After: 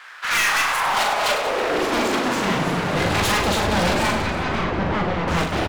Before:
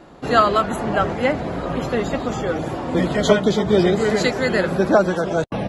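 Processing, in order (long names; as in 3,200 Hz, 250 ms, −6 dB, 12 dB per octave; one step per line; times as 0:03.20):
0:00.98–0:01.46: lower of the sound and its delayed copy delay 4.8 ms
octave-band graphic EQ 125/250/2,000 Hz +4/−5/+5 dB
full-wave rectification
high-pass filter sweep 1,500 Hz → 72 Hz, 0:00.38–0:03.41
gain into a clipping stage and back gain 25 dB
0:04.11–0:05.28: head-to-tape spacing loss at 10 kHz 29 dB
reverse bouncing-ball delay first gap 40 ms, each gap 1.5×, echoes 5
level +5.5 dB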